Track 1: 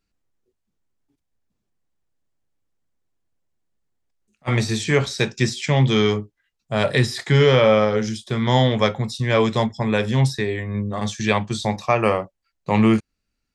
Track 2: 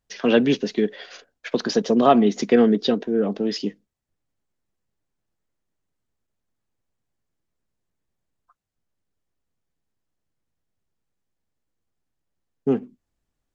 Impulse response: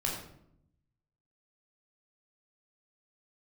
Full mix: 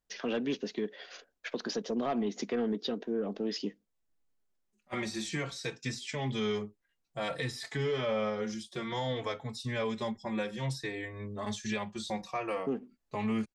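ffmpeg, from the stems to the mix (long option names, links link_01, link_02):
-filter_complex "[0:a]asplit=2[link_01][link_02];[link_02]adelay=4,afreqshift=-0.57[link_03];[link_01][link_03]amix=inputs=2:normalize=1,adelay=450,volume=-6.5dB[link_04];[1:a]volume=-5.5dB[link_05];[link_04][link_05]amix=inputs=2:normalize=0,equalizer=frequency=100:width=1.2:gain=-8.5,asoftclip=type=tanh:threshold=-14.5dB,alimiter=level_in=0.5dB:limit=-24dB:level=0:latency=1:release=354,volume=-0.5dB"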